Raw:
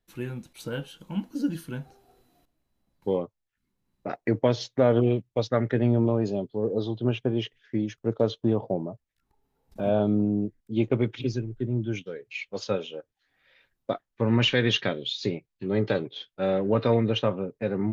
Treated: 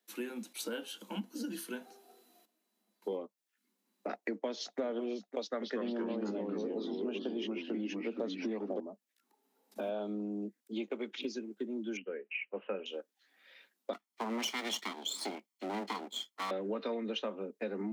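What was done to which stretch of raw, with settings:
1.22–3.12 s: comb of notches 280 Hz
4.10–4.80 s: echo throw 550 ms, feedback 20%, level -15 dB
5.40–8.80 s: ever faster or slower copies 219 ms, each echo -2 st, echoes 3
9.80–11.22 s: bass shelf 240 Hz -10 dB
11.97–12.86 s: Chebyshev low-pass 2.9 kHz, order 8
13.93–16.51 s: comb filter that takes the minimum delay 0.92 ms
whole clip: steep high-pass 200 Hz 96 dB/octave; treble shelf 3.5 kHz +7 dB; compression 4:1, threshold -36 dBFS

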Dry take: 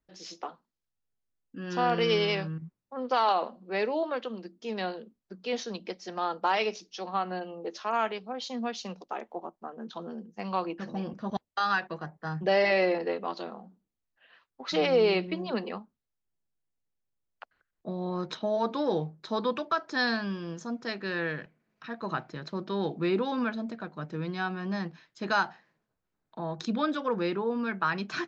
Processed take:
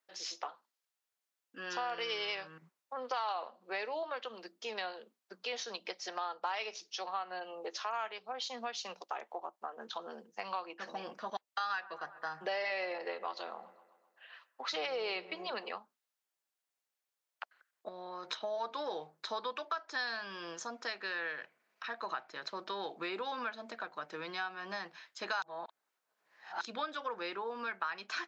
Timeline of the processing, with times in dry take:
11.66–15.68 s: feedback echo behind a low-pass 129 ms, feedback 56%, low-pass 1.7 kHz, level -20.5 dB
17.88–18.31 s: compression, threshold -36 dBFS
25.42–26.61 s: reverse
whole clip: high-pass 720 Hz 12 dB/octave; compression 3:1, threshold -43 dBFS; trim +5 dB

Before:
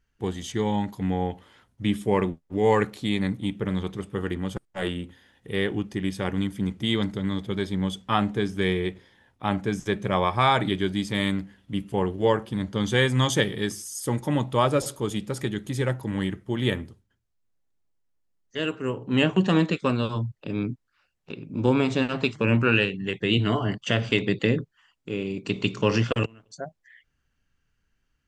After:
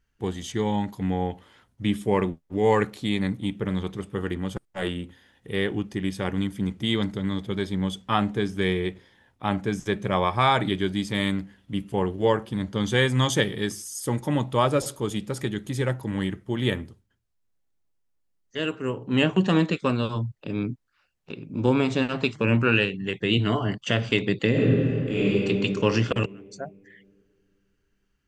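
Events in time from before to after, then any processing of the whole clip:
24.50–25.33 s: reverb throw, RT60 2.6 s, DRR -8.5 dB

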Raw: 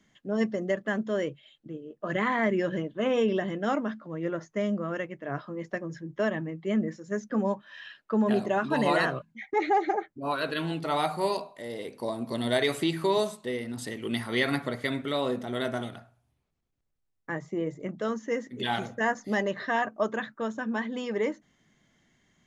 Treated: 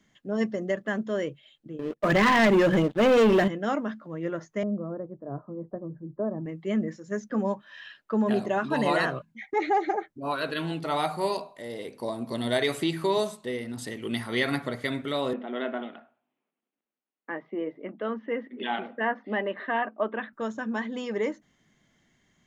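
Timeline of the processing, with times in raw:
1.79–3.48 s: waveshaping leveller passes 3
4.63–6.46 s: Bessel low-pass 670 Hz, order 8
15.33–20.33 s: elliptic band-pass 230–3000 Hz

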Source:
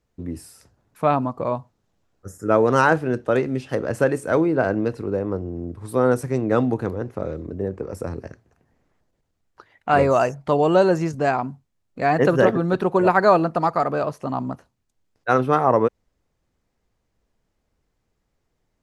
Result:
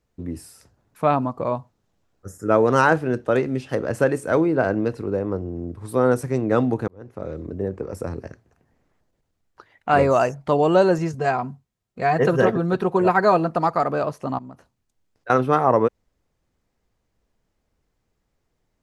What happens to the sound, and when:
6.88–7.44 s: fade in
10.98–13.47 s: comb of notches 290 Hz
14.38–15.30 s: compression 4:1, threshold -38 dBFS

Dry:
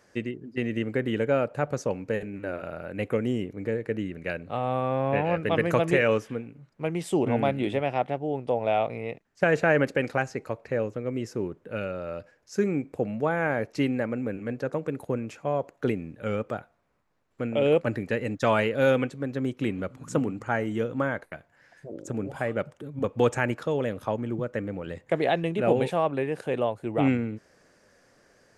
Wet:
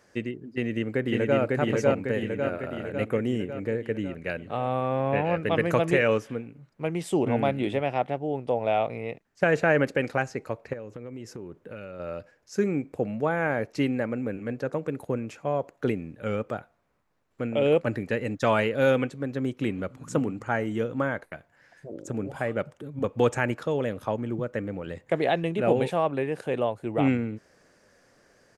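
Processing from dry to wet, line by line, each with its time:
0.49–1.39 s: echo throw 550 ms, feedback 60%, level -0.5 dB
10.73–12.00 s: compression, threshold -35 dBFS

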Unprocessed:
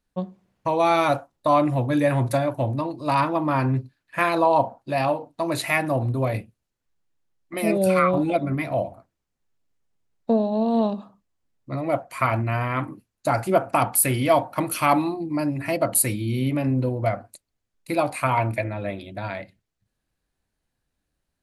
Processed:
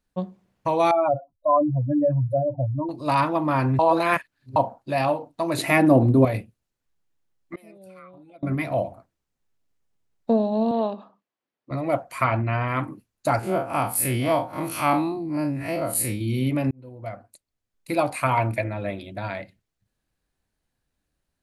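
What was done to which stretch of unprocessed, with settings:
0.91–2.89 s: spectral contrast enhancement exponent 3
3.79–4.56 s: reverse
5.58–6.25 s: peaking EQ 290 Hz +12.5 dB 1.9 oct
7.55–8.43 s: inverted gate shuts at -26 dBFS, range -27 dB
10.71–11.71 s: band-pass 310–3800 Hz
12.24–12.68 s: low-pass 4.5 kHz 24 dB/octave
13.39–16.21 s: spectral blur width 87 ms
16.71–18.00 s: fade in

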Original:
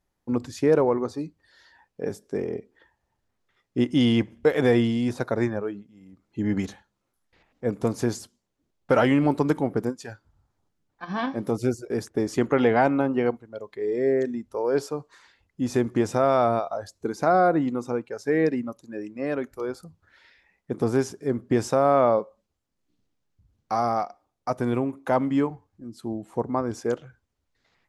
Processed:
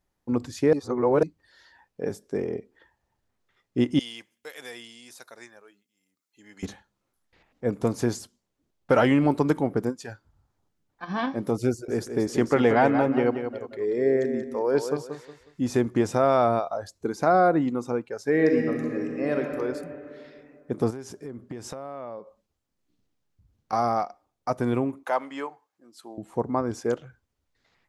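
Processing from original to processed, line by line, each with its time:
0.73–1.23 s: reverse
3.99–6.63 s: differentiator
11.70–15.74 s: feedback delay 182 ms, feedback 31%, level -8 dB
18.31–19.40 s: reverb throw, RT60 2.7 s, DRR 1 dB
20.90–23.73 s: compression, threshold -34 dBFS
25.03–26.18 s: high-pass 660 Hz

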